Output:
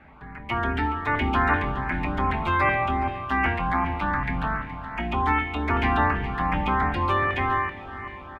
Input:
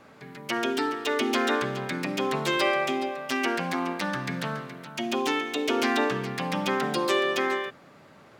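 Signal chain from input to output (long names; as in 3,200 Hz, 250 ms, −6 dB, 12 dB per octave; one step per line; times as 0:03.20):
sub-octave generator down 2 octaves, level +3 dB
drawn EQ curve 260 Hz 0 dB, 520 Hz −8 dB, 840 Hz +8 dB, 2,200 Hz +6 dB, 5,600 Hz −22 dB
feedback delay with all-pass diffusion 509 ms, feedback 61%, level −14.5 dB
auto-filter notch saw up 2.6 Hz 990–4,000 Hz
double-tracking delay 24 ms −11.5 dB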